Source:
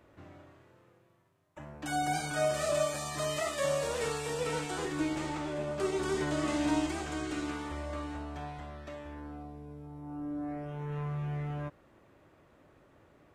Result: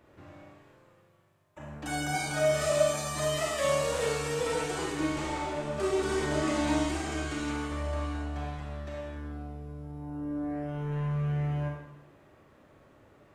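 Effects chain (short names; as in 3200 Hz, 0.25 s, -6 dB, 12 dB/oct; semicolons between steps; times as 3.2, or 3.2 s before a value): Schroeder reverb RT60 0.87 s, combs from 28 ms, DRR -0.5 dB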